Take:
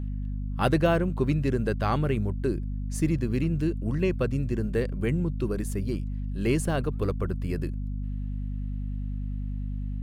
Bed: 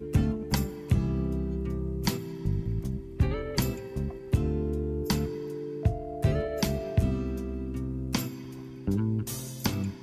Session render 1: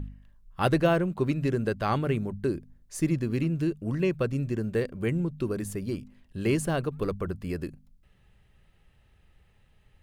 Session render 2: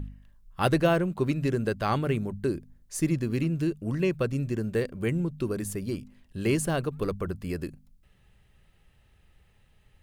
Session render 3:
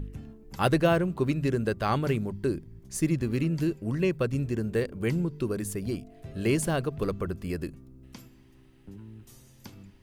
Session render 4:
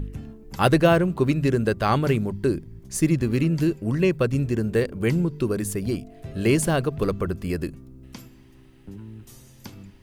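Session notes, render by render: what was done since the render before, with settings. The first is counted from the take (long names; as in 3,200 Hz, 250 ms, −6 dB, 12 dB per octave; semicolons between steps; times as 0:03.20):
hum removal 50 Hz, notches 5
high-shelf EQ 4,500 Hz +4.5 dB
mix in bed −18 dB
level +5.5 dB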